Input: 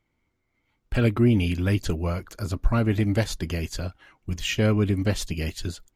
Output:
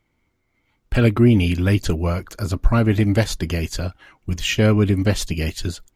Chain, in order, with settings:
level +5.5 dB

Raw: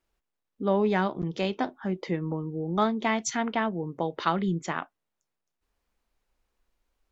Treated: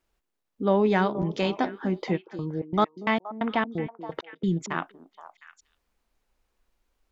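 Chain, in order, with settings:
0:02.16–0:04.70: gate pattern "x..xx.x.." 132 BPM −60 dB
echo through a band-pass that steps 236 ms, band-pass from 300 Hz, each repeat 1.4 octaves, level −9 dB
level +2.5 dB

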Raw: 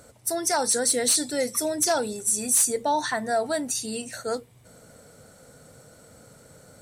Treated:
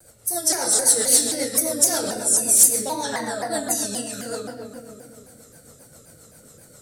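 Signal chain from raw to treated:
high-shelf EQ 9,300 Hz +10.5 dB
convolution reverb RT60 2.5 s, pre-delay 6 ms, DRR −3 dB
rotating-speaker cabinet horn 7.5 Hz
high-shelf EQ 3,900 Hz +7 dB
pitch modulation by a square or saw wave saw down 3.8 Hz, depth 160 cents
level −3.5 dB

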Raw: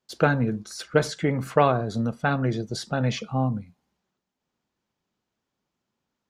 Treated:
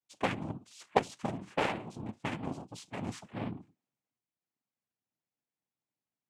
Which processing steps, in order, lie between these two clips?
cochlear-implant simulation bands 4
harmonic generator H 7 −21 dB, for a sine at −1 dBFS
level −7 dB

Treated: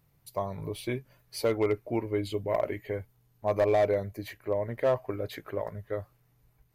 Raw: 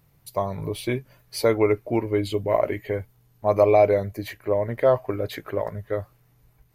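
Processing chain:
hard clipping −12 dBFS, distortion −18 dB
level −6.5 dB

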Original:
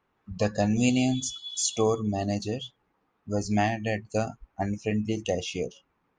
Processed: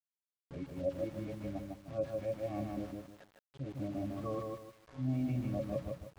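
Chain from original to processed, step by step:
played backwards from end to start
noise gate −41 dBFS, range −14 dB
high-shelf EQ 2,200 Hz −11 dB
resonances in every octave C#, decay 0.11 s
delay with a band-pass on its return 608 ms, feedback 65%, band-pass 820 Hz, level −17.5 dB
centre clipping without the shift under −49.5 dBFS
high-frequency loss of the air 68 metres
feedback echo at a low word length 153 ms, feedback 35%, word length 10 bits, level −3 dB

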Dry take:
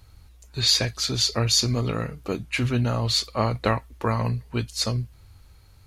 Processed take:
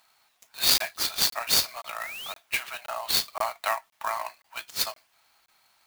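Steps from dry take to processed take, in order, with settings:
Chebyshev high-pass filter 640 Hz, order 6
sound drawn into the spectrogram rise, 0:02.00–0:02.33, 1,800–3,900 Hz −38 dBFS
regular buffer underruns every 0.52 s, samples 1,024, zero, from 0:00.78
converter with an unsteady clock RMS 0.027 ms

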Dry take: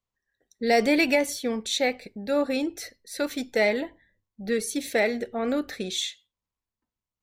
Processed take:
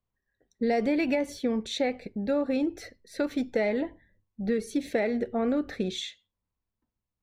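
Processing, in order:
low-pass filter 2,000 Hz 6 dB per octave
low-shelf EQ 390 Hz +6.5 dB
downward compressor 5 to 1, threshold −23 dBFS, peak gain reduction 8 dB

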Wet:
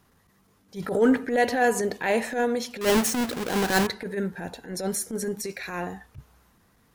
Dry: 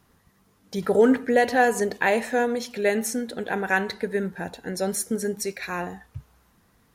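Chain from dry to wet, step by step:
0:02.81–0:03.87: each half-wave held at its own peak
transient designer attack −12 dB, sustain +1 dB

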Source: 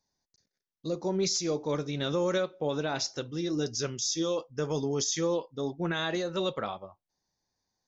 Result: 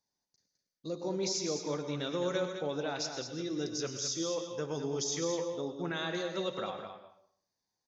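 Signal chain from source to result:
low-shelf EQ 74 Hz −11.5 dB
single-tap delay 210 ms −8 dB
dense smooth reverb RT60 0.56 s, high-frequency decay 0.9×, pre-delay 90 ms, DRR 9 dB
level −5 dB

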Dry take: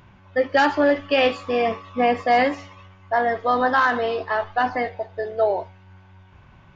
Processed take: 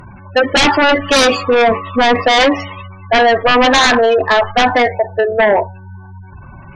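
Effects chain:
gate on every frequency bin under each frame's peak −20 dB strong
high-shelf EQ 2,700 Hz +6.5 dB
sine wavefolder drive 11 dB, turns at −6.5 dBFS

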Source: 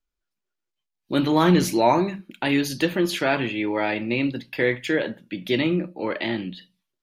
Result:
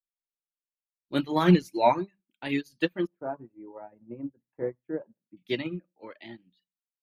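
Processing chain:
0:03.07–0:05.37: low-pass filter 1,100 Hz 24 dB per octave
reverb reduction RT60 1.3 s
expander for the loud parts 2.5 to 1, over −34 dBFS
level +1 dB

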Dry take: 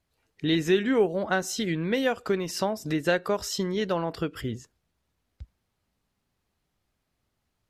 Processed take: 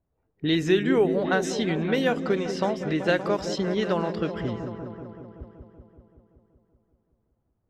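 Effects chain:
echo whose low-pass opens from repeat to repeat 190 ms, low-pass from 400 Hz, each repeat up 1 octave, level −6 dB
low-pass that shuts in the quiet parts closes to 800 Hz, open at −19.5 dBFS
level +1 dB

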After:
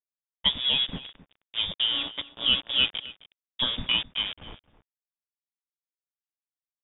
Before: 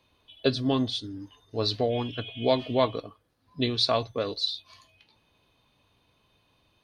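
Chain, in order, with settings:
centre clipping without the shift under −30.5 dBFS
voice inversion scrambler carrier 3,600 Hz
slap from a distant wall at 45 metres, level −17 dB

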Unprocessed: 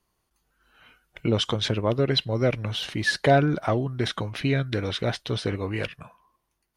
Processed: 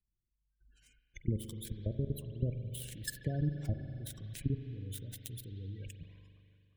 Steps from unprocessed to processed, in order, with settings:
gap after every zero crossing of 0.099 ms
output level in coarse steps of 22 dB
notch filter 1,300 Hz, Q 5.7
downward compressor, threshold −26 dBFS, peak gain reduction 7 dB
guitar amp tone stack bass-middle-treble 10-0-1
feedback echo with a band-pass in the loop 355 ms, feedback 55%, band-pass 1,100 Hz, level −18.5 dB
gate on every frequency bin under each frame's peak −25 dB strong
high-shelf EQ 5,900 Hz +12 dB
spring reverb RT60 2.5 s, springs 41 ms, chirp 50 ms, DRR 8 dB
one half of a high-frequency compander encoder only
level +13 dB

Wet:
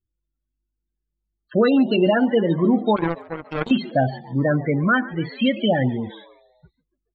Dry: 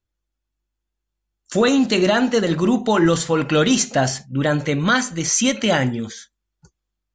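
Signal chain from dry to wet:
Butterworth low-pass 4,200 Hz 72 dB per octave
spectral peaks only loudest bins 16
0:02.96–0:03.71: power curve on the samples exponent 3
echo with shifted repeats 141 ms, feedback 54%, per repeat +100 Hz, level −20.5 dB

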